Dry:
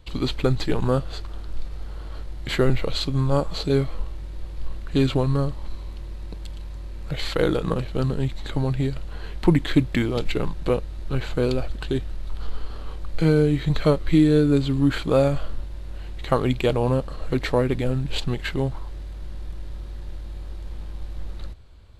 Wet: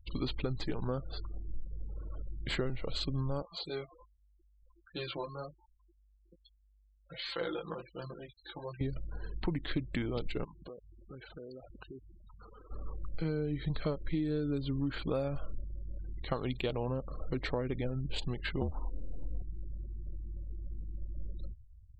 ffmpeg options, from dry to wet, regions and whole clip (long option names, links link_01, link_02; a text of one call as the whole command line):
ffmpeg -i in.wav -filter_complex "[0:a]asettb=1/sr,asplit=3[link_01][link_02][link_03];[link_01]atrim=end=3.424[link_04];[link_02]atrim=start=3.42:end=8.81,asetpts=PTS-STARTPTS,afade=type=in:duration=0.004:curve=qsin,afade=type=out:start_time=5.386:duration=0.004:curve=qsin,highpass=frequency=740:poles=1,aecho=1:1:5.8:0.59,atrim=end_sample=237699,flanger=delay=16.5:depth=3:speed=1.3[link_05];[link_03]atrim=start=8.806[link_06];[link_04][link_05]acrossfade=duration=0.004:curve1=hsin:curve2=qsin[link_07];[link_07][link_06]acrossfade=duration=0.004:curve1=qsin:curve2=hsin,asettb=1/sr,asplit=3[link_08][link_09][link_10];[link_08]atrim=end=10.444[link_11];[link_09]atrim=start=10.44:end=12.71,asetpts=PTS-STARTPTS,afade=type=in:duration=0.004:curve=qsin,afade=type=out:start_time=2.266:duration=0.004:curve=qsin,highpass=frequency=310:poles=1,acompressor=threshold=-37dB:ratio=6:attack=3.2:release=140:knee=1:detection=peak[link_12];[link_10]atrim=start=12.706[link_13];[link_11][link_12]acrossfade=duration=0.004:curve1=hsin:curve2=qsin[link_14];[link_14][link_13]acrossfade=duration=0.004:curve1=qsin:curve2=hsin,asettb=1/sr,asplit=3[link_15][link_16][link_17];[link_15]atrim=end=16.194[link_18];[link_16]atrim=start=16.19:end=16.86,asetpts=PTS-STARTPTS,afade=type=in:duration=0.004:curve=qsin,afade=type=out:start_time=0.666:duration=0.004:curve=qsin,adynamicequalizer=threshold=0.00501:dfrequency=3800:dqfactor=1.4:tfrequency=3800:tqfactor=1.4:attack=5:release=100:ratio=0.375:range=2.5:mode=boostabove:tftype=bell,aeval=exprs='sgn(val(0))*max(abs(val(0))-0.00708,0)':channel_layout=same[link_19];[link_17]atrim=start=16.856[link_20];[link_18][link_19]acrossfade=duration=0.004:curve1=hsin:curve2=qsin[link_21];[link_21][link_20]acrossfade=duration=0.004:curve1=qsin:curve2=hsin,asettb=1/sr,asplit=3[link_22][link_23][link_24];[link_22]atrim=end=18.614[link_25];[link_23]atrim=start=18.61:end=19.42,asetpts=PTS-STARTPTS,afade=type=in:duration=0.004:curve=qsin,afade=type=out:start_time=0.806:duration=0.004:curve=qsin,equalizer=frequency=2400:width=2.3:gain=-8,acontrast=80,afreqshift=-50[link_26];[link_24]atrim=start=19.416[link_27];[link_25][link_26]acrossfade=duration=0.004:curve1=hsin:curve2=qsin[link_28];[link_28][link_27]acrossfade=duration=0.004:curve1=qsin:curve2=hsin,afftfilt=real='re*gte(hypot(re,im),0.0158)':imag='im*gte(hypot(re,im),0.0158)':win_size=1024:overlap=0.75,acompressor=threshold=-23dB:ratio=6,volume=-7dB" out.wav